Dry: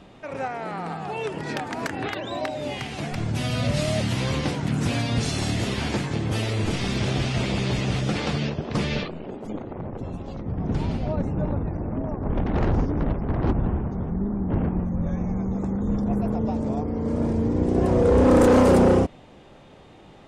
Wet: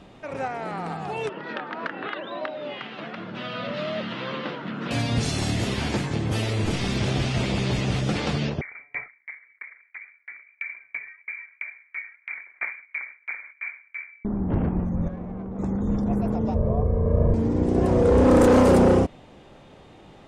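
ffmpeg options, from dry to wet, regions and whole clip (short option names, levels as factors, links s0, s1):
-filter_complex "[0:a]asettb=1/sr,asplit=3[s0][s1][s2];[s0]atrim=end=1.294[s3];[s1]atrim=start=1.29:end=4.91,asetpts=PTS-STARTPTS,afade=t=in:d=0.004:c=qsin,afade=t=out:st=3.616:d=0.004:c=qsin,highpass=f=200:w=0.5412,highpass=f=200:w=1.3066,equalizer=f=270:t=q:w=4:g=-7,equalizer=f=400:t=q:w=4:g=-4,equalizer=f=770:t=q:w=4:g=-7,equalizer=f=1300:t=q:w=4:g=5,equalizer=f=2300:t=q:w=4:g=-5,lowpass=f=3400:w=0.5412,lowpass=f=3400:w=1.3066,bandreject=f=50:t=h:w=6,bandreject=f=100:t=h:w=6,bandreject=f=150:t=h:w=6,bandreject=f=200:t=h:w=6,bandreject=f=250:t=h:w=6,bandreject=f=300:t=h:w=6,bandreject=f=350:t=h:w=6,bandreject=f=400:t=h:w=6[s4];[s2]atrim=start=4.906[s5];[s3][s4]acrossfade=d=0.004:c1=hsin:c2=qsin[s6];[s6][s5]acrossfade=d=0.004:c1=qsin:c2=hsin,asettb=1/sr,asplit=3[s7][s8][s9];[s7]atrim=end=8.614[s10];[s8]atrim=start=8.61:end=14.25,asetpts=PTS-STARTPTS,afade=t=in:d=0.004:c=qsin,afade=t=out:st=5.636:d=0.004:c=qsin,highpass=f=120:w=0.5412,highpass=f=120:w=1.3066,lowpass=f=2100:t=q:w=0.5098,lowpass=f=2100:t=q:w=0.6013,lowpass=f=2100:t=q:w=0.9,lowpass=f=2100:t=q:w=2.563,afreqshift=-2500,aeval=exprs='val(0)*pow(10,-37*if(lt(mod(3*n/s,1),2*abs(3)/1000),1-mod(3*n/s,1)/(2*abs(3)/1000),(mod(3*n/s,1)-2*abs(3)/1000)/(1-2*abs(3)/1000))/20)':c=same[s11];[s9]atrim=start=14.246[s12];[s10][s11]acrossfade=d=0.004:c1=hsin:c2=qsin[s13];[s13][s12]acrossfade=d=0.004:c1=qsin:c2=hsin,asettb=1/sr,asplit=3[s14][s15][s16];[s14]atrim=end=15.084[s17];[s15]atrim=start=15.08:end=15.59,asetpts=PTS-STARTPTS,afade=t=in:d=0.004:c=qsin,afade=t=out:st=0.506:d=0.004:c=qsin,lowshelf=f=300:g=-10.5,bandreject=f=850:w=11,adynamicsmooth=sensitivity=3:basefreq=1100[s18];[s16]atrim=start=15.586[s19];[s17][s18]acrossfade=d=0.004:c1=hsin:c2=qsin[s20];[s20][s19]acrossfade=d=0.004:c1=qsin:c2=hsin,asettb=1/sr,asplit=3[s21][s22][s23];[s21]atrim=end=16.544[s24];[s22]atrim=start=16.54:end=17.34,asetpts=PTS-STARTPTS,afade=t=in:d=0.004:c=qsin,afade=t=out:st=0.796:d=0.004:c=qsin,lowpass=1200,lowshelf=f=71:g=11.5,aecho=1:1:1.8:0.94,atrim=end_sample=35280[s25];[s23]atrim=start=17.336[s26];[s24][s25]acrossfade=d=0.004:c1=hsin:c2=qsin[s27];[s27][s26]acrossfade=d=0.004:c1=qsin:c2=hsin"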